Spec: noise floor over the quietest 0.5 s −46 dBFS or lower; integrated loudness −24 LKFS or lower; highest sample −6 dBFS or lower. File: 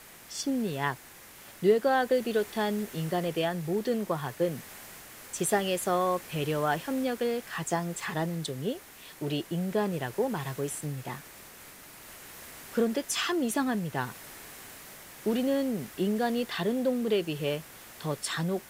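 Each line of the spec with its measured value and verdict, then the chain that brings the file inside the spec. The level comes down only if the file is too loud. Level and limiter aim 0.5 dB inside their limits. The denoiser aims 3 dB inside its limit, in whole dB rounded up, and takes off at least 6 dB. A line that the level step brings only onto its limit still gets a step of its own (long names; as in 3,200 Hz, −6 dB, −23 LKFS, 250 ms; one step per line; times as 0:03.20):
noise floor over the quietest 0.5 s −50 dBFS: in spec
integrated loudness −30.5 LKFS: in spec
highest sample −11.0 dBFS: in spec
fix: no processing needed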